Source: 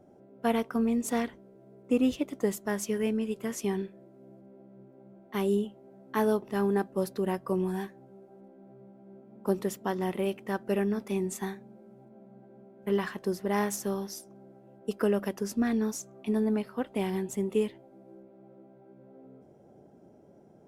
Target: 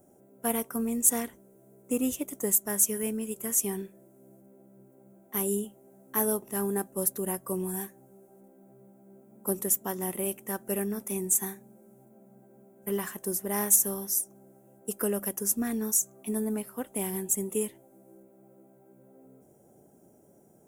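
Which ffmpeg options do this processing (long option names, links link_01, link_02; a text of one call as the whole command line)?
ffmpeg -i in.wav -af "aexciter=amount=11.6:drive=5.7:freq=6600,acontrast=29,volume=-8.5dB" out.wav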